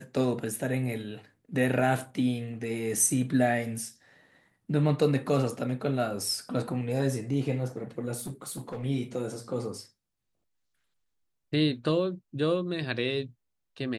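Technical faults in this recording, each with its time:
0:08.17–0:08.85: clipping −32 dBFS

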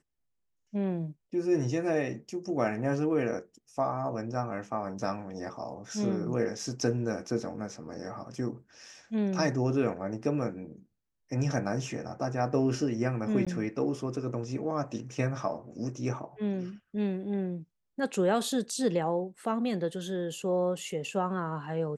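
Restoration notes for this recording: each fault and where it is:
0:13.45–0:13.47: drop-out 16 ms

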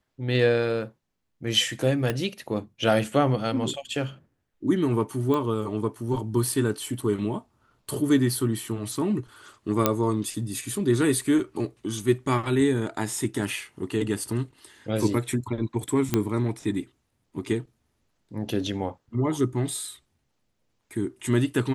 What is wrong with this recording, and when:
0:02.10: click −12 dBFS
0:05.34: click −16 dBFS
0:09.86: click −4 dBFS
0:16.14: click −8 dBFS

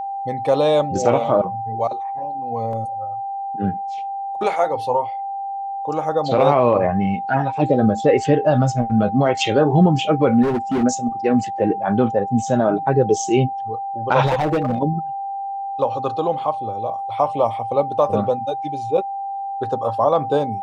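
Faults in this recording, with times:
whistle 790 Hz −24 dBFS
0:02.73: drop-out 2.1 ms
0:10.42–0:10.84: clipping −16.5 dBFS
0:14.25–0:14.78: clipping −15 dBFS

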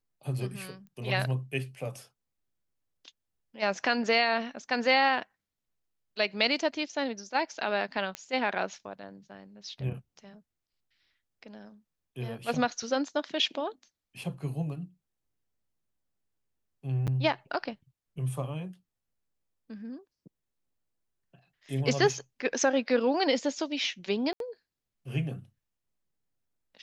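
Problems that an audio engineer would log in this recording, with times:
0:00.87: click −39 dBFS
0:08.15: click −19 dBFS
0:17.07–0:17.08: drop-out 7.7 ms
0:24.33–0:24.40: drop-out 72 ms

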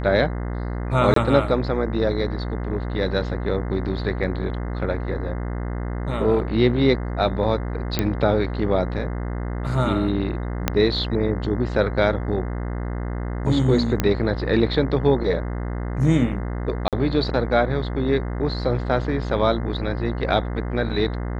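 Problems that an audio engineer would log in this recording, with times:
mains buzz 60 Hz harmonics 35 −27 dBFS
0:01.14–0:01.16: drop-out 23 ms
0:07.99: click −6 dBFS
0:10.68: click −4 dBFS
0:14.00: click −6 dBFS
0:16.88–0:16.93: drop-out 47 ms

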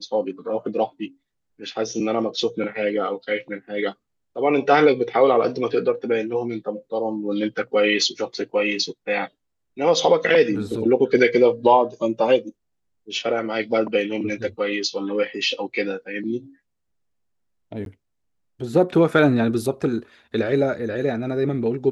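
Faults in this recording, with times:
0:17.85–0:17.86: drop-out 12 ms

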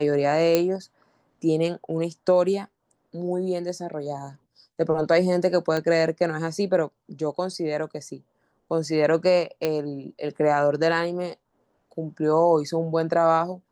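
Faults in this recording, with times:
0:00.55: click −6 dBFS
0:05.77: click −14 dBFS
0:09.65: click −11 dBFS

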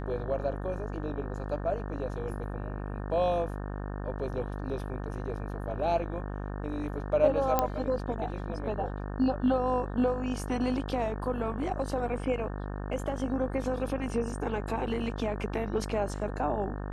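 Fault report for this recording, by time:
mains buzz 50 Hz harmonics 36 −36 dBFS
0:07.59: click −11 dBFS

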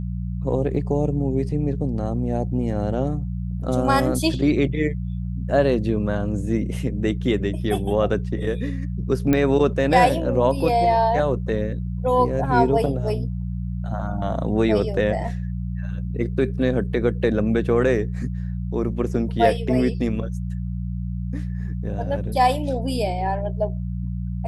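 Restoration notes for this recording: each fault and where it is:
mains hum 60 Hz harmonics 3 −27 dBFS
0:09.33: click −8 dBFS

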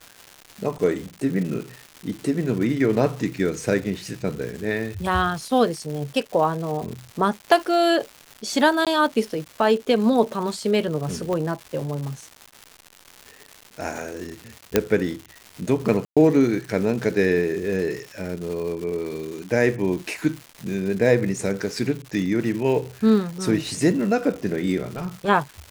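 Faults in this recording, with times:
surface crackle 320 per second −31 dBFS
0:08.85–0:08.87: drop-out 17 ms
0:11.33: click −15 dBFS
0:14.76: click −2 dBFS
0:16.05–0:16.17: drop-out 116 ms
0:24.88–0:25.29: clipping −23.5 dBFS

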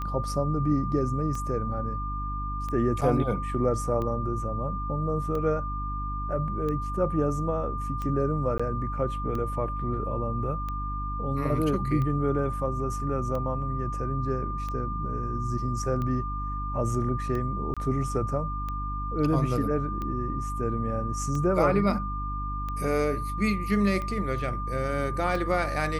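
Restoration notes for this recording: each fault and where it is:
mains hum 50 Hz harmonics 6 −33 dBFS
scratch tick 45 rpm −22 dBFS
whistle 1,200 Hz −33 dBFS
0:03.01–0:03.02: drop-out 5.6 ms
0:08.58–0:08.60: drop-out 15 ms
0:17.74–0:17.77: drop-out 26 ms

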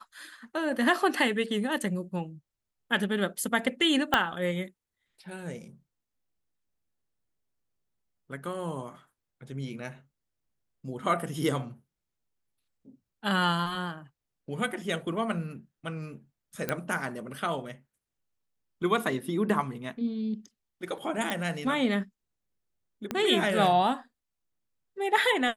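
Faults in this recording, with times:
0:04.14: click −8 dBFS
0:16.69: click −13 dBFS
0:21.30: click
0:23.11: click −16 dBFS

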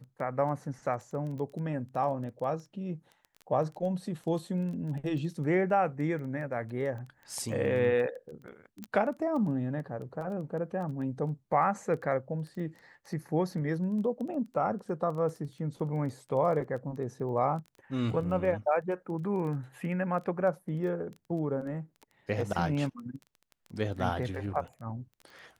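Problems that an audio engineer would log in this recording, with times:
surface crackle 11 per second −38 dBFS
0:08.84: click −23 dBFS

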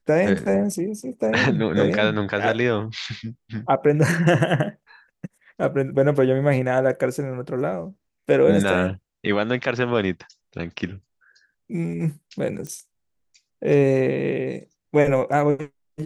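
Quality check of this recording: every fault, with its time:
0:12.67: click −21 dBFS

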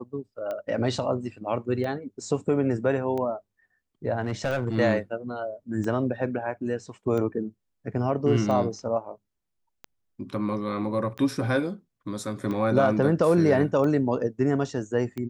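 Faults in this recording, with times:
scratch tick 45 rpm −21 dBFS
0:04.21–0:04.75: clipping −21.5 dBFS

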